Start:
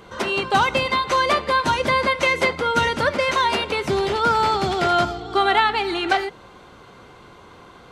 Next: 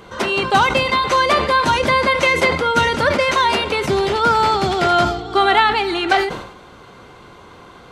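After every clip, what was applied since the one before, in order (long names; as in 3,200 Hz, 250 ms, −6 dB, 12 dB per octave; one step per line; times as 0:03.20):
level that may fall only so fast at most 73 dB per second
level +3.5 dB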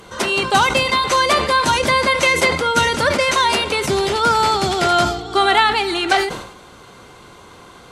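parametric band 9,500 Hz +10.5 dB 1.7 octaves
level −1 dB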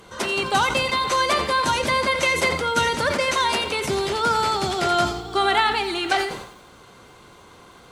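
feedback echo at a low word length 86 ms, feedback 35%, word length 7 bits, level −12 dB
level −5.5 dB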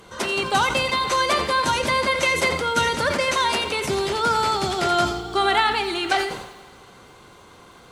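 four-comb reverb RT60 2.1 s, combs from 31 ms, DRR 17.5 dB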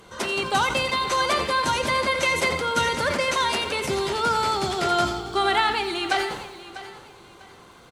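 repeating echo 646 ms, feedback 27%, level −15.5 dB
level −2 dB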